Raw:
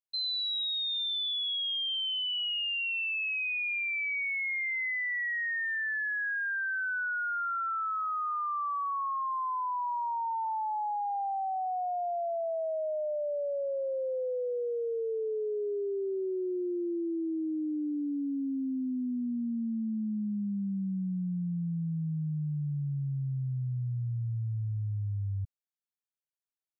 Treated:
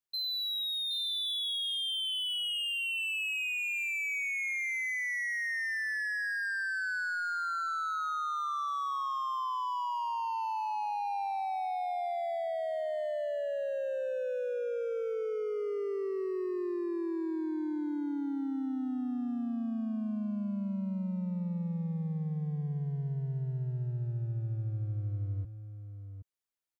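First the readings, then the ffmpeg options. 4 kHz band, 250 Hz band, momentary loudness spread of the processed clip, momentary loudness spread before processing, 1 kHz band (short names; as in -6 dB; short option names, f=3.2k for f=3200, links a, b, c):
-1.5 dB, -1.5 dB, 5 LU, 4 LU, -1.5 dB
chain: -filter_complex "[0:a]asplit=2[a][b];[b]aeval=exprs='0.0119*(abs(mod(val(0)/0.0119+3,4)-2)-1)':c=same,volume=-9.5dB[c];[a][c]amix=inputs=2:normalize=0,aecho=1:1:772:0.316,volume=-1.5dB"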